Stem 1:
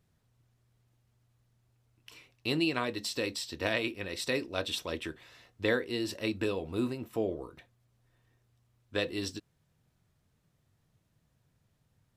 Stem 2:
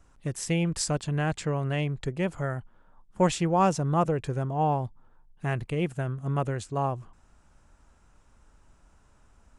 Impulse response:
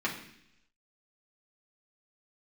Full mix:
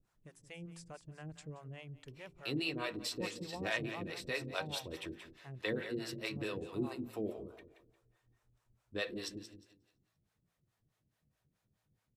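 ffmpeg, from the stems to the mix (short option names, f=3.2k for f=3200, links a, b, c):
-filter_complex "[0:a]volume=-4.5dB,asplit=3[a][b][c];[b]volume=-12.5dB[d];[c]volume=-9.5dB[e];[1:a]volume=-16dB,asplit=2[f][g];[g]volume=-16.5dB[h];[2:a]atrim=start_sample=2205[i];[d][i]afir=irnorm=-1:irlink=0[j];[e][h]amix=inputs=2:normalize=0,aecho=0:1:176|352|528|704|880:1|0.35|0.122|0.0429|0.015[k];[a][f][j][k]amix=inputs=4:normalize=0,acrossover=split=470[l][m];[l]aeval=exprs='val(0)*(1-1/2+1/2*cos(2*PI*4.7*n/s))':c=same[n];[m]aeval=exprs='val(0)*(1-1/2-1/2*cos(2*PI*4.7*n/s))':c=same[o];[n][o]amix=inputs=2:normalize=0,bandreject=f=55.96:t=h:w=4,bandreject=f=111.92:t=h:w=4,bandreject=f=167.88:t=h:w=4,bandreject=f=223.84:t=h:w=4,bandreject=f=279.8:t=h:w=4,bandreject=f=335.76:t=h:w=4,bandreject=f=391.72:t=h:w=4"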